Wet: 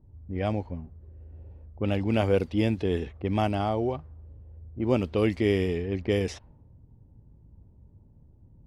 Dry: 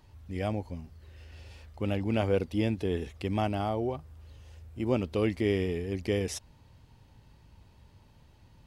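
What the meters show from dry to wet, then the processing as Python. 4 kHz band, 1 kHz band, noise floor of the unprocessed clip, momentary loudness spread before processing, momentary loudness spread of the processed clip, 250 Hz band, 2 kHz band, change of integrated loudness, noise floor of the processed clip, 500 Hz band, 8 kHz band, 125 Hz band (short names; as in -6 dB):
+2.5 dB, +3.5 dB, -59 dBFS, 21 LU, 18 LU, +3.5 dB, +3.0 dB, +3.5 dB, -56 dBFS, +3.5 dB, n/a, +3.5 dB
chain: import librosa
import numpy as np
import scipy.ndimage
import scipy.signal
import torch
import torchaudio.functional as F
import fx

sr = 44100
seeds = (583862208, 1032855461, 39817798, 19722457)

y = fx.env_lowpass(x, sr, base_hz=320.0, full_db=-24.0)
y = y * librosa.db_to_amplitude(3.5)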